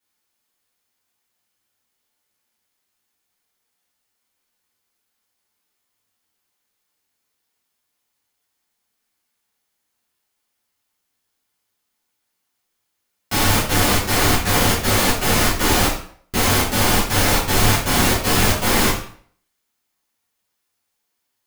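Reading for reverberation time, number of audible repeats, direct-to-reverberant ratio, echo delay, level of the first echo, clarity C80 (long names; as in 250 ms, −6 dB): 0.55 s, no echo audible, −10.0 dB, no echo audible, no echo audible, 8.5 dB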